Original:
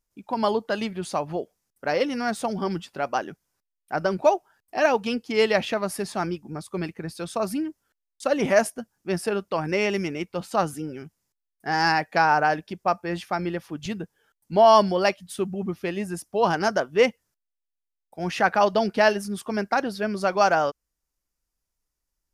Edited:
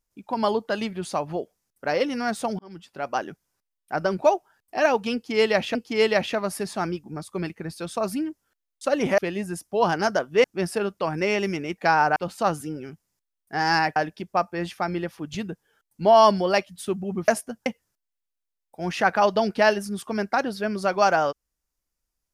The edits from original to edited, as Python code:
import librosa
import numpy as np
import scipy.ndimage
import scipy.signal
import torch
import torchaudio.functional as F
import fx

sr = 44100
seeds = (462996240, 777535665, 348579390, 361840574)

y = fx.edit(x, sr, fx.fade_in_span(start_s=2.59, length_s=0.62),
    fx.repeat(start_s=5.14, length_s=0.61, count=2),
    fx.swap(start_s=8.57, length_s=0.38, other_s=15.79, other_length_s=1.26),
    fx.move(start_s=12.09, length_s=0.38, to_s=10.29), tone=tone)